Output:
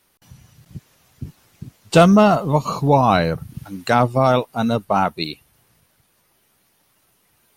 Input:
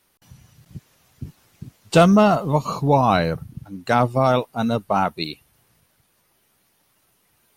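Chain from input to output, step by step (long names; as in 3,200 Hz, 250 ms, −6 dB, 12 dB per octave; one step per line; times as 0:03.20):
0:02.67–0:04.85: one half of a high-frequency compander encoder only
level +2 dB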